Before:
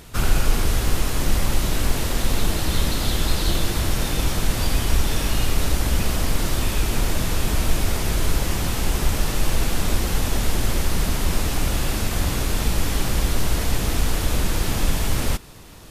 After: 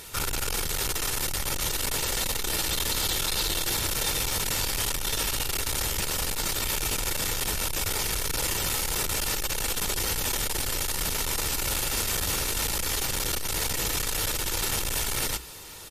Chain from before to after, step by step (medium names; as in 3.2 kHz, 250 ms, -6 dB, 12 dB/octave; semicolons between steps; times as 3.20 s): saturation -20.5 dBFS, distortion -9 dB; tilt EQ +2 dB/octave; hum notches 60/120/180/240/300/360 Hz; comb 2.2 ms, depth 35%; MP3 56 kbps 44.1 kHz